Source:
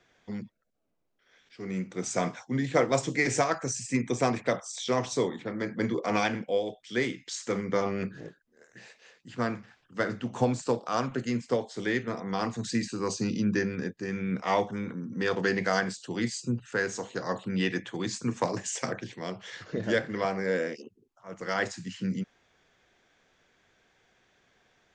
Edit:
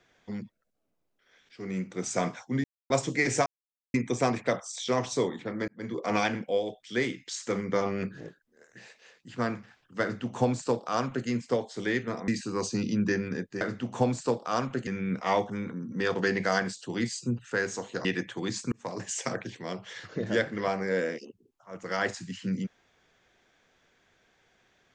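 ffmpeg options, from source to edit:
-filter_complex "[0:a]asplit=11[a][b][c][d][e][f][g][h][i][j][k];[a]atrim=end=2.64,asetpts=PTS-STARTPTS,afade=t=out:st=2.636:d=0.004:c=hsin[l];[b]atrim=start=2.64:end=2.9,asetpts=PTS-STARTPTS,volume=0[m];[c]atrim=start=2.9:end=3.46,asetpts=PTS-STARTPTS,afade=t=in:d=0.004:c=hsin,afade=t=out:st=0.556:d=0.004:c=hsin[n];[d]atrim=start=3.46:end=3.94,asetpts=PTS-STARTPTS,volume=0[o];[e]atrim=start=3.94:end=5.68,asetpts=PTS-STARTPTS,afade=t=in:d=0.004:c=hsin,afade=t=out:st=1.736:d=0.004:c=hsin[p];[f]atrim=start=5.68:end=12.282,asetpts=PTS-STARTPTS,afade=t=in:d=0.43[q];[g]atrim=start=12.748:end=14.082[r];[h]atrim=start=10.018:end=11.282[s];[i]atrim=start=14.078:end=17.262[t];[j]atrim=start=17.618:end=18.29,asetpts=PTS-STARTPTS,afade=t=out:st=0.668:d=0.004:c=hsin[u];[k]atrim=start=18.29,asetpts=PTS-STARTPTS,afade=t=in:d=0.4[v];[l][m][n][o][p][q]concat=n=6:v=0:a=1[w];[w][r]acrossfade=d=0.004:c1=hsin:c2=hsin[x];[x][s]acrossfade=d=0.004:c1=hsin:c2=hsin[y];[y][t]acrossfade=d=0.004:c1=hsin:c2=hsin[z];[u][v]concat=n=2:v=0:a=1[aa];[z][aa]acrossfade=d=0.004:c1=hsin:c2=hsin"

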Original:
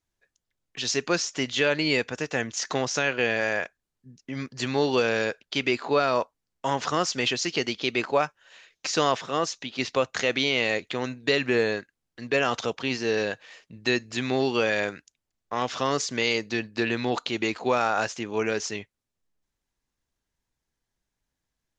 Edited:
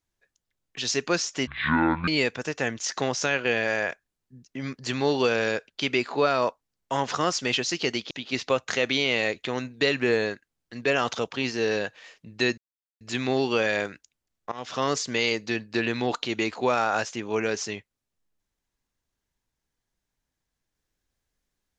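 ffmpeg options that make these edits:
-filter_complex "[0:a]asplit=6[a][b][c][d][e][f];[a]atrim=end=1.474[g];[b]atrim=start=1.47:end=1.81,asetpts=PTS-STARTPTS,asetrate=24696,aresample=44100[h];[c]atrim=start=1.806:end=7.842[i];[d]atrim=start=9.568:end=14.04,asetpts=PTS-STARTPTS,afade=t=out:st=4.468:d=0.004:c=hsin,apad=pad_dur=0.43[j];[e]atrim=start=14.04:end=15.55,asetpts=PTS-STARTPTS,afade=t=in:d=0.004:c=hsin,afade=t=out:st=1.506:d=0.004:c=hsin:silence=0.112202[k];[f]atrim=start=15.55,asetpts=PTS-STARTPTS,afade=t=in:d=0.31:silence=0.112202[l];[g][h]acrossfade=d=0.004:c1=hsin:c2=hsin[m];[m][i]acrossfade=d=0.004:c1=hsin:c2=hsin[n];[j][k][l]concat=n=3:v=0:a=1[o];[n][o]acrossfade=d=0.004:c1=hsin:c2=hsin"

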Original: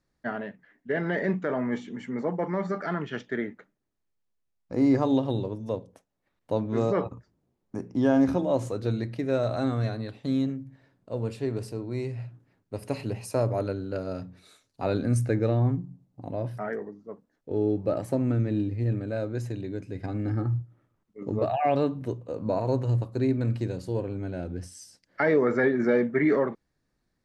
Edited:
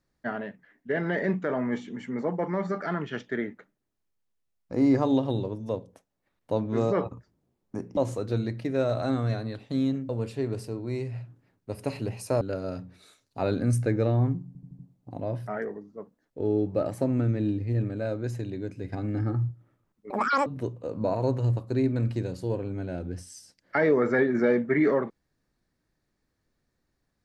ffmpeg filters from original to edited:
-filter_complex "[0:a]asplit=10[a][b][c][d][e][f][g][h][i][j];[a]atrim=end=7.972[k];[b]atrim=start=8.508:end=10.632[l];[c]atrim=start=11.128:end=13.452[m];[d]atrim=start=13.838:end=15.982[n];[e]atrim=start=15.898:end=15.982[o];[f]atrim=start=15.898:end=15.982[p];[g]atrim=start=15.898:end=15.982[q];[h]atrim=start=15.898:end=21.214[r];[i]atrim=start=21.21:end=21.91,asetpts=PTS-STARTPTS,asetrate=85554,aresample=44100,atrim=end_sample=15912,asetpts=PTS-STARTPTS[s];[j]atrim=start=21.906[t];[k][l]acrossfade=d=0.004:c1=hsin:c2=hsin[u];[u][m]acrossfade=d=0.004:c1=hsin:c2=hsin[v];[v][n]acrossfade=d=0.004:c1=hsin:c2=hsin[w];[w][o]acrossfade=d=0.004:c1=hsin:c2=hsin[x];[x][p]acrossfade=d=0.004:c1=hsin:c2=hsin[y];[y][q]acrossfade=d=0.004:c1=hsin:c2=hsin[z];[z][r]acrossfade=d=0.004:c1=hsin:c2=hsin[aa];[aa][s]acrossfade=d=0.004:c1=hsin:c2=hsin[ab];[ab][t]acrossfade=d=0.004:c1=hsin:c2=hsin"

